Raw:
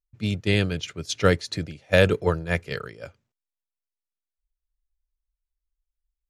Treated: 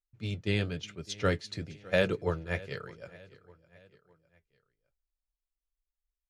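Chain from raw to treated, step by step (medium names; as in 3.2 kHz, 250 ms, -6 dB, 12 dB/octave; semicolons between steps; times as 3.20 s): treble shelf 11 kHz -11.5 dB; on a send: feedback delay 608 ms, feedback 48%, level -21 dB; on the sum: flange 1 Hz, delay 4.9 ms, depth 4.5 ms, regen -56%; trim -4 dB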